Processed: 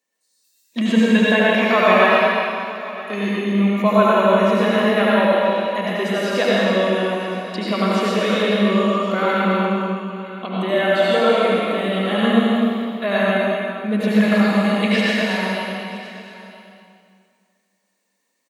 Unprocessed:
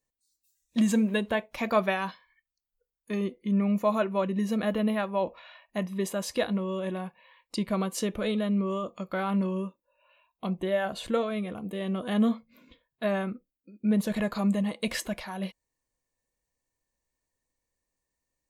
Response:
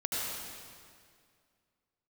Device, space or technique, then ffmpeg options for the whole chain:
stadium PA: -filter_complex "[0:a]asettb=1/sr,asplit=3[link_01][link_02][link_03];[link_01]atrim=end=9.244[link_04];[link_02]atrim=start=9.24:end=10.53,asetpts=PTS-STARTPTS,afade=type=in:duration=0.004:curve=qsin,afade=type=out:start_time=1.286:duration=0.004:curve=qsin,lowpass=6500[link_05];[link_03]atrim=start=10.526[link_06];[link_04][link_05]acrossfade=duration=0.004:curve1=hsin:curve2=qsin[link_07];[link_07][link_06]acrossfade=duration=0.004:curve1=qsin:curve2=hsin,acrossover=split=4100[link_08][link_09];[link_09]acompressor=threshold=-53dB:ratio=4:attack=1:release=60[link_10];[link_08][link_10]amix=inputs=2:normalize=0,highpass=frequency=210:width=0.5412,highpass=frequency=210:width=1.3066,equalizer=frequency=2500:width_type=o:width=2.4:gain=5.5,aecho=1:1:212.8|250.7:0.251|0.355[link_11];[1:a]atrim=start_sample=2205[link_12];[link_11][link_12]afir=irnorm=-1:irlink=0,aecho=1:1:969:0.126,volume=5dB"

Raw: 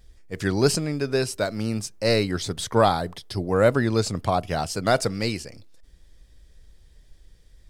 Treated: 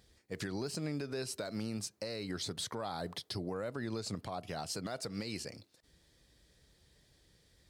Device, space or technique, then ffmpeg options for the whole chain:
broadcast voice chain: -af "highpass=110,deesser=0.45,acompressor=threshold=-25dB:ratio=6,equalizer=frequency=4200:width_type=o:width=0.22:gain=5.5,alimiter=level_in=0.5dB:limit=-24dB:level=0:latency=1:release=163,volume=-0.5dB,volume=-3.5dB"

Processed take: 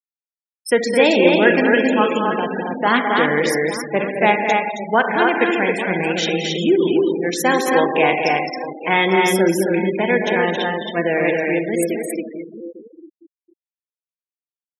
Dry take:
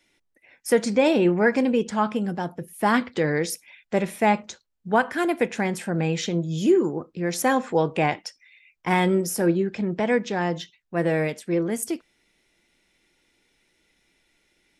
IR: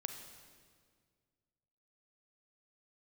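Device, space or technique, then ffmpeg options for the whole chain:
stadium PA: -filter_complex "[0:a]highpass=230,equalizer=frequency=3100:width_type=o:width=1.5:gain=7,aecho=1:1:212.8|271.1:0.447|0.708,aecho=1:1:853|1706:0.2|0.0359[link_01];[1:a]atrim=start_sample=2205[link_02];[link_01][link_02]afir=irnorm=-1:irlink=0,afftfilt=real='re*gte(hypot(re,im),0.0398)':imag='im*gte(hypot(re,im),0.0398)':win_size=1024:overlap=0.75,volume=5.5dB"

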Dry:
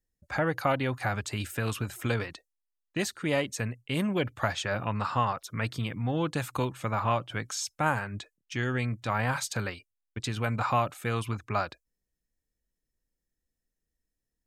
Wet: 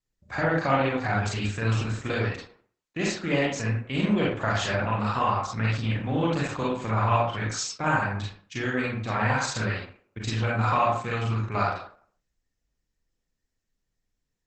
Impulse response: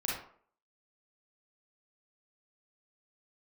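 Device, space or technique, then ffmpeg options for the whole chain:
speakerphone in a meeting room: -filter_complex "[1:a]atrim=start_sample=2205[link_01];[0:a][link_01]afir=irnorm=-1:irlink=0,dynaudnorm=framelen=130:gausssize=3:maxgain=3.5dB,volume=-3.5dB" -ar 48000 -c:a libopus -b:a 12k

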